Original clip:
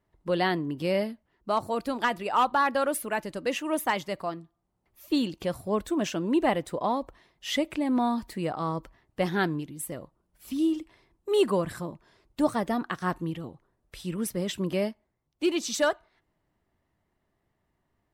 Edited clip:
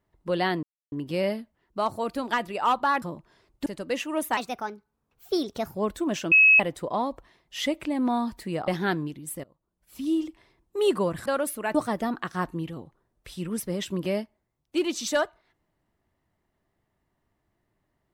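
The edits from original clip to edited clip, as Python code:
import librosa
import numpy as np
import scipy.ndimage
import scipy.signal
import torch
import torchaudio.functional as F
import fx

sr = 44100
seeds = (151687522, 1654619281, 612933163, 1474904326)

y = fx.edit(x, sr, fx.insert_silence(at_s=0.63, length_s=0.29),
    fx.swap(start_s=2.73, length_s=0.49, other_s=11.78, other_length_s=0.64),
    fx.speed_span(start_s=3.93, length_s=1.72, speed=1.25),
    fx.bleep(start_s=6.22, length_s=0.28, hz=2570.0, db=-12.5),
    fx.cut(start_s=8.58, length_s=0.62),
    fx.fade_in_from(start_s=9.96, length_s=0.72, floor_db=-24.0), tone=tone)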